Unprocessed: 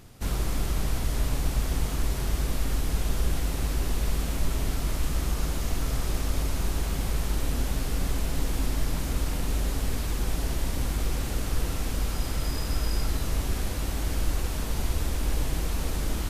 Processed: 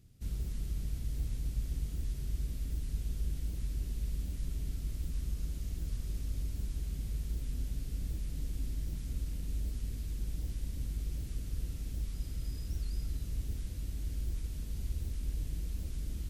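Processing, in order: high-pass 79 Hz 6 dB/octave; amplifier tone stack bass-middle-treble 10-0-1; warped record 78 rpm, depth 250 cents; trim +4.5 dB

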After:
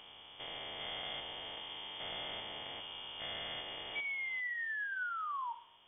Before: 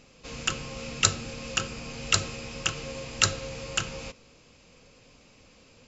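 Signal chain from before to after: spectrogram pixelated in time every 400 ms; high-pass 48 Hz; painted sound rise, 3.95–5.53 s, 1.1–2.5 kHz -32 dBFS; frequency inversion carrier 3.4 kHz; two-slope reverb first 0.68 s, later 3.2 s, from -27 dB, DRR 12 dB; trim -7 dB

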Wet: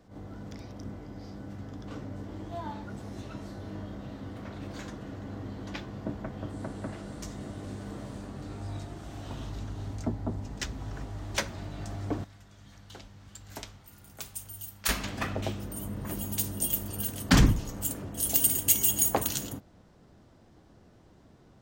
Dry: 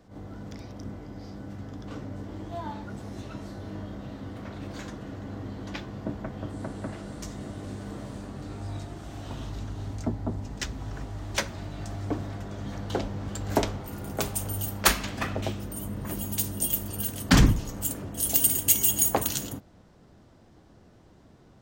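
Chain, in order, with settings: 12.24–14.89 s: amplifier tone stack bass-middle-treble 5-5-5; trim -2 dB

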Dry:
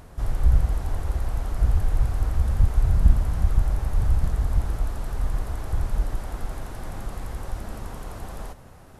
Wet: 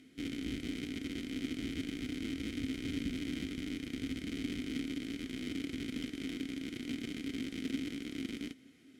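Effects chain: in parallel at -3 dB: Schmitt trigger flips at -33.5 dBFS; on the sum: vowel filter i; tone controls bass -6 dB, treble +12 dB; comb of notches 570 Hz; trim +6 dB

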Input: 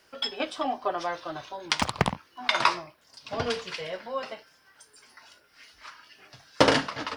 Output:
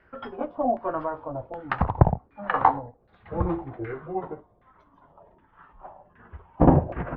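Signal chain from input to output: pitch bend over the whole clip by -10.5 st starting unshifted; RIAA curve playback; LFO low-pass saw down 1.3 Hz 580–1900 Hz; trim -1.5 dB

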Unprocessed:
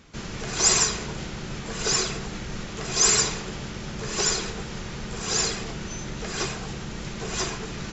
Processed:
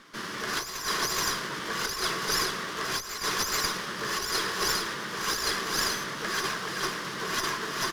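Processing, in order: cabinet simulation 300–5500 Hz, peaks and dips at 480 Hz -4 dB, 760 Hz -10 dB, 1.1 kHz +7 dB, 1.7 kHz +5 dB, 2.5 kHz -8 dB, 4 kHz -4 dB; on a send: delay 428 ms -4.5 dB; on the sum: compressor with a negative ratio -30 dBFS, ratio -0.5; treble shelf 3.1 kHz +7 dB; sliding maximum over 3 samples

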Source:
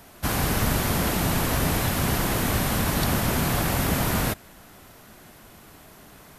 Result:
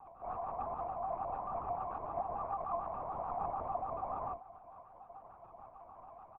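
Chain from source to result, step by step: median filter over 15 samples; treble shelf 2.6 kHz +8 dB; comb 3.4 ms, depth 31%; in parallel at 0 dB: compressor with a negative ratio -30 dBFS, ratio -0.5; on the sum: bit crusher 7-bit; AM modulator 140 Hz, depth 70%; cascade formant filter a; feedback comb 370 Hz, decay 0.44 s, harmonics all, mix 80%; flange 1.1 Hz, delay 5.2 ms, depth 6.8 ms, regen +71%; LPC vocoder at 8 kHz whisper; vibrato with a chosen wave square 6.8 Hz, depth 100 cents; trim +16 dB

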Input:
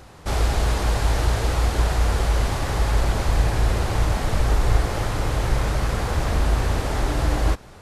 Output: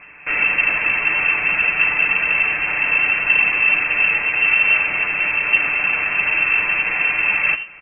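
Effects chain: comb filter that takes the minimum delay 7 ms; frequency shift +160 Hz; delay 84 ms -16 dB; frequency inversion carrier 2.9 kHz; trim +5 dB

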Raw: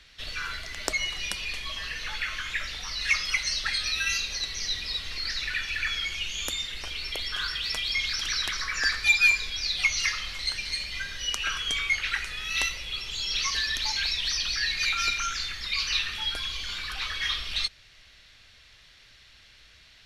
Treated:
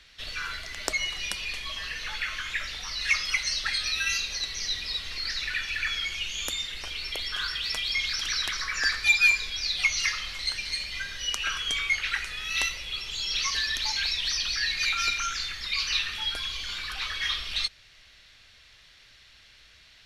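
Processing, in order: bass shelf 390 Hz -2.5 dB

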